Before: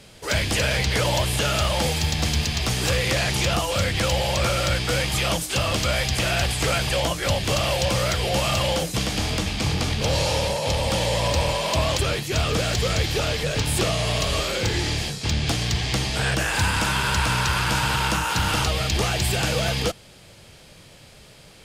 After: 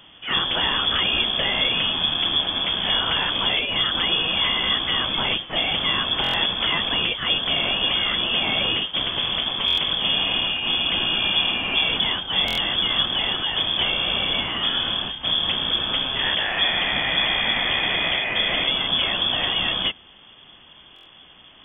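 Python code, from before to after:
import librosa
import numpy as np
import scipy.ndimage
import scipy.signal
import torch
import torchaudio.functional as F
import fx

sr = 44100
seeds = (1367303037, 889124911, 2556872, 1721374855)

y = fx.freq_invert(x, sr, carrier_hz=3400)
y = fx.buffer_glitch(y, sr, at_s=(6.22, 9.66, 12.46, 20.94), block=1024, repeats=4)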